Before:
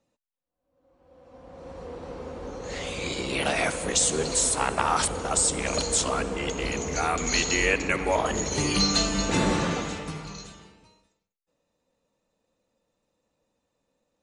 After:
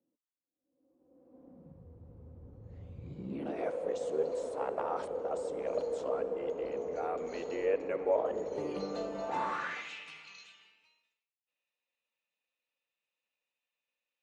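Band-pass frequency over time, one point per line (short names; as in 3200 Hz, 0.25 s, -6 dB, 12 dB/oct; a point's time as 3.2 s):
band-pass, Q 3.2
1.45 s 300 Hz
1.88 s 100 Hz
3.02 s 100 Hz
3.69 s 510 Hz
9.11 s 510 Hz
9.9 s 2600 Hz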